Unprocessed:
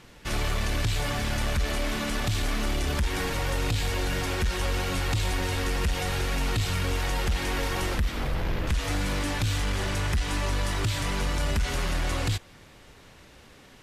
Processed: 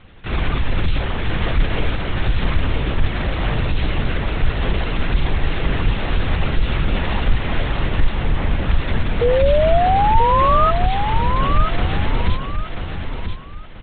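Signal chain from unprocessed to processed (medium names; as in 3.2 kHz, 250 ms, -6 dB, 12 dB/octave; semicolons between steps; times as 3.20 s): LPC vocoder at 8 kHz whisper; painted sound rise, 9.21–10.71 s, 470–1300 Hz -19 dBFS; bass shelf 65 Hz +11 dB; feedback delay 985 ms, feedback 27%, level -7 dB; trim +3 dB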